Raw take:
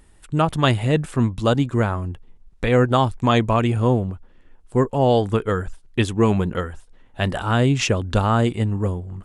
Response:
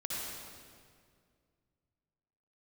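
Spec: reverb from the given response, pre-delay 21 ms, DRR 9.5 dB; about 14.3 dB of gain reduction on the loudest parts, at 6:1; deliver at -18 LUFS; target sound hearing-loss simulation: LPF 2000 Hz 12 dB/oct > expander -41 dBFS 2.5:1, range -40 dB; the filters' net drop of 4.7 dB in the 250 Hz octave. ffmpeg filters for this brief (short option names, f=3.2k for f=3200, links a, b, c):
-filter_complex "[0:a]equalizer=f=250:t=o:g=-6,acompressor=threshold=-30dB:ratio=6,asplit=2[a][b];[1:a]atrim=start_sample=2205,adelay=21[c];[b][c]afir=irnorm=-1:irlink=0,volume=-12.5dB[d];[a][d]amix=inputs=2:normalize=0,lowpass=2k,agate=range=-40dB:threshold=-41dB:ratio=2.5,volume=16.5dB"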